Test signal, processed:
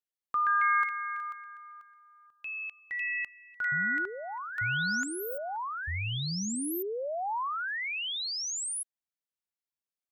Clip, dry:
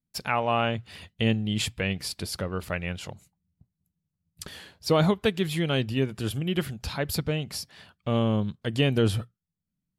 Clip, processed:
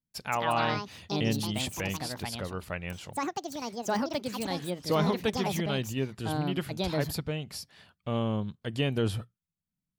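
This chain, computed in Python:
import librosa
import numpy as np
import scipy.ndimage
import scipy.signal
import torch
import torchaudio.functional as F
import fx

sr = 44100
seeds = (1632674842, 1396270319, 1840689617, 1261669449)

y = fx.echo_pitch(x, sr, ms=211, semitones=5, count=2, db_per_echo=-3.0)
y = fx.dynamic_eq(y, sr, hz=940.0, q=2.1, threshold_db=-43.0, ratio=4.0, max_db=3)
y = y * librosa.db_to_amplitude(-5.5)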